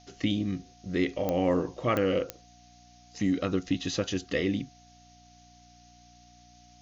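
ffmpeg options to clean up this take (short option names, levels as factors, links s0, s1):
-af "adeclick=t=4,bandreject=f=59.8:t=h:w=4,bandreject=f=119.6:t=h:w=4,bandreject=f=179.4:t=h:w=4,bandreject=f=239.2:t=h:w=4,bandreject=f=299:t=h:w=4,bandreject=f=720:w=30,afftdn=nr=18:nf=-56"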